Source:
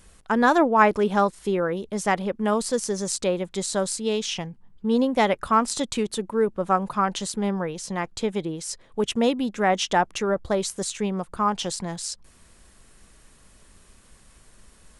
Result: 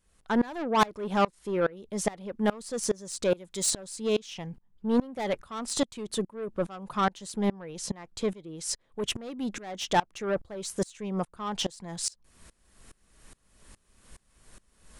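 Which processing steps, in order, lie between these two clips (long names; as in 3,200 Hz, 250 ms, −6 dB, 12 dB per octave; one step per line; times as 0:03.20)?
0:03.29–0:03.69: high-shelf EQ 5,100 Hz → 3,500 Hz +10.5 dB
soft clipping −19.5 dBFS, distortion −10 dB
tremolo with a ramp in dB swelling 2.4 Hz, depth 25 dB
level +4 dB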